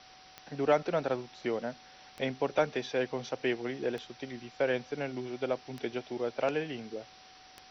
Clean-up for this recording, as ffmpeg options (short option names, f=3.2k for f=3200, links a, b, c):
-af "adeclick=t=4,bandreject=f=750:w=30,afwtdn=0.0028"